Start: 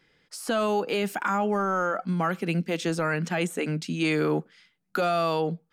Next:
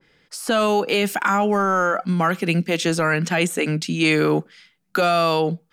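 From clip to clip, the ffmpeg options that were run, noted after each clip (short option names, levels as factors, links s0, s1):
-af "adynamicequalizer=threshold=0.0141:dfrequency=1700:dqfactor=0.7:tfrequency=1700:tqfactor=0.7:attack=5:release=100:ratio=0.375:range=2:mode=boostabove:tftype=highshelf,volume=2"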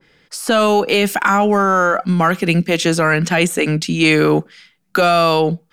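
-af "aeval=exprs='0.422*(cos(1*acos(clip(val(0)/0.422,-1,1)))-cos(1*PI/2))+0.00237*(cos(8*acos(clip(val(0)/0.422,-1,1)))-cos(8*PI/2))':c=same,volume=1.78"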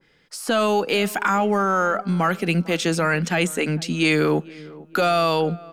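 -filter_complex "[0:a]asplit=2[s0][s1];[s1]adelay=452,lowpass=f=1300:p=1,volume=0.1,asplit=2[s2][s3];[s3]adelay=452,lowpass=f=1300:p=1,volume=0.49,asplit=2[s4][s5];[s5]adelay=452,lowpass=f=1300:p=1,volume=0.49,asplit=2[s6][s7];[s7]adelay=452,lowpass=f=1300:p=1,volume=0.49[s8];[s0][s2][s4][s6][s8]amix=inputs=5:normalize=0,volume=0.501"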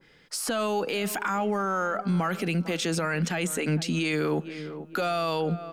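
-af "alimiter=limit=0.0891:level=0:latency=1:release=90,volume=1.26"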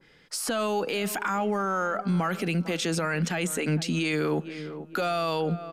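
-af "aresample=32000,aresample=44100"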